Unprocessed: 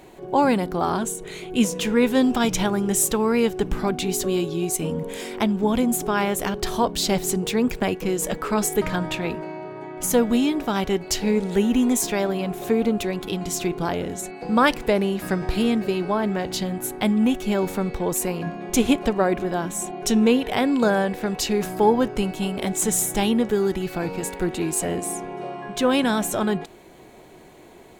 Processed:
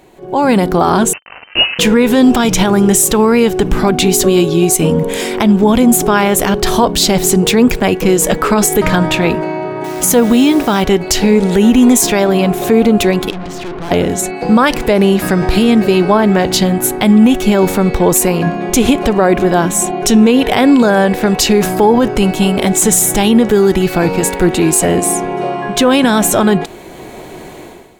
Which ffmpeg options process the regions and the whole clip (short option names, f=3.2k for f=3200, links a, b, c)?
-filter_complex "[0:a]asettb=1/sr,asplit=3[a][b][c];[a]atrim=end=1.134[d];[b]atrim=start=1.13:end=1.79,asetpts=PTS-STARTPTS,afade=t=in:d=0.004:c=qsin,afade=t=out:st=0.656:d=0.004:c=qsin,highpass=f=520:p=1,acrusher=bits=4:mix=0:aa=0.5,lowpass=f=2.6k:t=q:w=0.5098,lowpass=f=2.6k:t=q:w=0.6013,lowpass=f=2.6k:t=q:w=0.9,lowpass=f=2.6k:t=q:w=2.563,afreqshift=-3100[e];[c]atrim=start=1.786[f];[d][e]acrossfade=d=0.004:c1=hsin:c2=qsin[g];[g][f]acrossfade=d=0.004:c1=qsin:c2=hsin,asettb=1/sr,asplit=3[h][i][j];[h]atrim=end=9.844[k];[i]atrim=start=9.84:end=10.83,asetpts=PTS-STARTPTS,afade=t=in:d=0.004:c=qsin,afade=t=out:st=0.986:d=0.004:c=qsin,highpass=f=60:p=1,acrusher=bits=8:dc=4:mix=0:aa=0.000001[l];[j]atrim=start=10.826[m];[k][l]acrossfade=d=0.004:c1=hsin:c2=qsin[n];[n][m]acrossfade=d=0.004:c1=qsin:c2=hsin,asettb=1/sr,asplit=3[o][p][q];[o]atrim=end=13.304[r];[p]atrim=start=13.3:end=13.91,asetpts=PTS-STARTPTS,afade=t=in:d=0.004:c=qsin,afade=t=out:st=0.606:d=0.004:c=qsin,lowpass=2.9k,aeval=exprs='(tanh(70.8*val(0)+0.55)-tanh(0.55))/70.8':c=same[s];[q]atrim=start=13.906[t];[r][s]acrossfade=d=0.004:c1=hsin:c2=qsin[u];[u][t]acrossfade=d=0.004:c1=qsin:c2=hsin,alimiter=limit=-15.5dB:level=0:latency=1:release=52,dynaudnorm=f=100:g=7:m=15dB,volume=1.5dB"